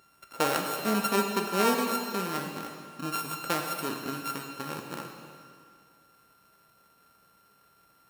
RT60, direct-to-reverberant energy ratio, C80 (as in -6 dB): 2.2 s, 2.5 dB, 5.5 dB